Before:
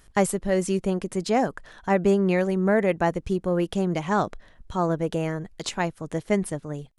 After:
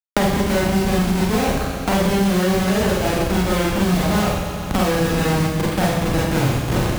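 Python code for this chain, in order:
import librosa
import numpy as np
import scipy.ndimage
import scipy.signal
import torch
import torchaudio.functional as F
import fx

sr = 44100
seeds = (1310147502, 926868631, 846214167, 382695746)

p1 = fx.tape_stop_end(x, sr, length_s=0.82)
p2 = scipy.signal.sosfilt(scipy.signal.butter(4, 2400.0, 'lowpass', fs=sr, output='sos'), p1)
p3 = fx.schmitt(p2, sr, flips_db=-30.0)
p4 = scipy.signal.sosfilt(scipy.signal.butter(2, 46.0, 'highpass', fs=sr, output='sos'), p3)
p5 = fx.low_shelf(p4, sr, hz=65.0, db=9.0)
p6 = p5 + fx.echo_feedback(p5, sr, ms=132, feedback_pct=57, wet_db=-13.5, dry=0)
p7 = fx.rev_schroeder(p6, sr, rt60_s=0.7, comb_ms=30, drr_db=-6.5)
p8 = fx.band_squash(p7, sr, depth_pct=100)
y = F.gain(torch.from_numpy(p8), -1.0).numpy()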